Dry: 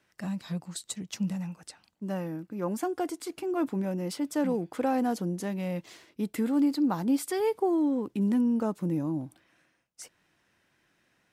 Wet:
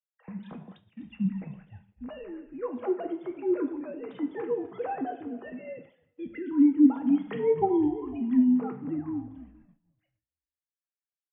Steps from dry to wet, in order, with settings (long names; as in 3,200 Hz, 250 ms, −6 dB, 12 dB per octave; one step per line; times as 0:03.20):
three sine waves on the formant tracks
on a send: echo with shifted repeats 251 ms, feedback 59%, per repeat −47 Hz, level −18.5 dB
on the sum: coupled-rooms reverb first 0.54 s, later 2.1 s, DRR 4 dB
downward expander −45 dBFS